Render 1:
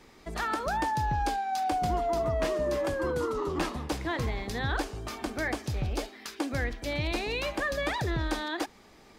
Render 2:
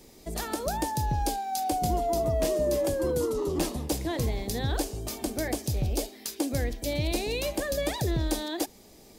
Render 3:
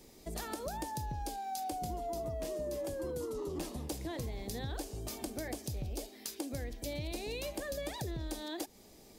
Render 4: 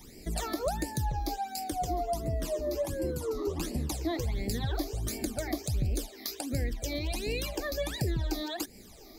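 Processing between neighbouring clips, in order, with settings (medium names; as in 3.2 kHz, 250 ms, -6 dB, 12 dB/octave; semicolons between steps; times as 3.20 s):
FFT filter 610 Hz 0 dB, 1.3 kHz -13 dB, 14 kHz +13 dB; trim +3 dB
compression 4:1, threshold -32 dBFS, peak gain reduction 9 dB; trim -4.5 dB
phase shifter stages 12, 1.4 Hz, lowest notch 150–1200 Hz; trim +9 dB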